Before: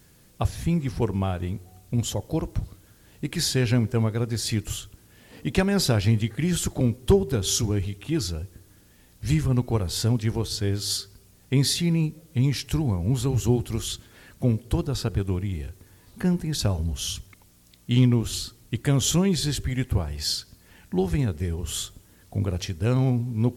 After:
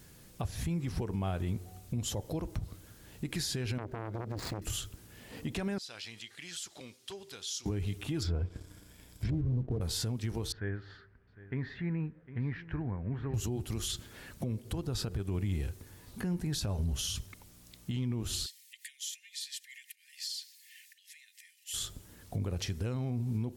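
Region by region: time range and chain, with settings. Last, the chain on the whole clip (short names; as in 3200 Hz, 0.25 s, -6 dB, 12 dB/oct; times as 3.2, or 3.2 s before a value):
3.78–4.62 median filter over 15 samples + core saturation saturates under 1100 Hz
5.78–7.66 band-pass 4400 Hz, Q 0.95 + compressor 2:1, threshold -44 dBFS
8.22–9.81 ripple EQ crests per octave 1.7, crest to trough 7 dB + treble ducked by the level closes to 420 Hz, closed at -21.5 dBFS + sample leveller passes 1
10.52–13.34 block floating point 7-bit + ladder low-pass 1900 Hz, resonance 65% + echo 0.754 s -17.5 dB
18.46–21.74 comb 3.3 ms, depth 47% + compressor 20:1, threshold -34 dBFS + steep high-pass 1800 Hz 96 dB/oct
whole clip: compressor 4:1, threshold -28 dBFS; limiter -25.5 dBFS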